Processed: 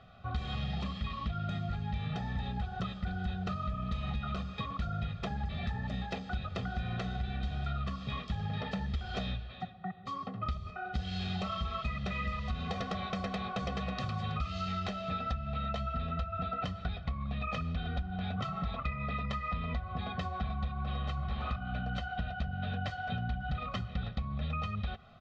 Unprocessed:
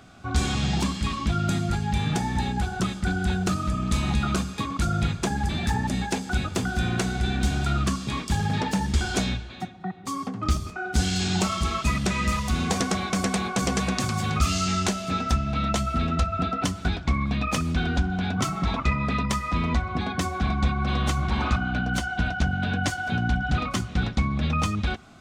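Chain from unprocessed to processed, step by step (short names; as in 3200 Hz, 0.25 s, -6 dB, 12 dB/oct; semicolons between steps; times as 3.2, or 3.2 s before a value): Chebyshev low-pass 3800 Hz, order 3; comb 1.6 ms, depth 87%; compressor, threshold -23 dBFS, peak gain reduction 11 dB; gain -8.5 dB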